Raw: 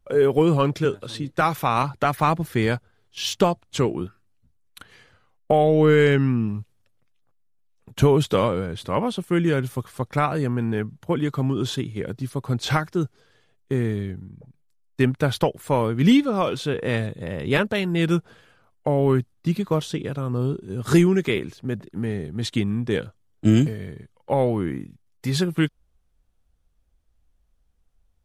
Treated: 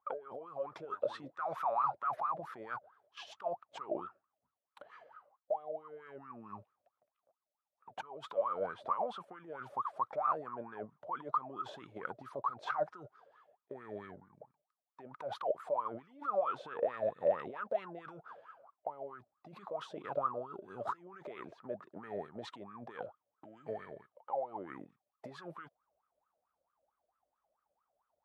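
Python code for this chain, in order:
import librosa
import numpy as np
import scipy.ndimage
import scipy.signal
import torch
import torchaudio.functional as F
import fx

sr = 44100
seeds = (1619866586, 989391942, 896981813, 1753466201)

y = fx.highpass(x, sr, hz=88.0, slope=6)
y = fx.over_compress(y, sr, threshold_db=-29.0, ratio=-1.0)
y = fx.wah_lfo(y, sr, hz=4.5, low_hz=570.0, high_hz=1300.0, q=19.0)
y = F.gain(torch.from_numpy(y), 11.0).numpy()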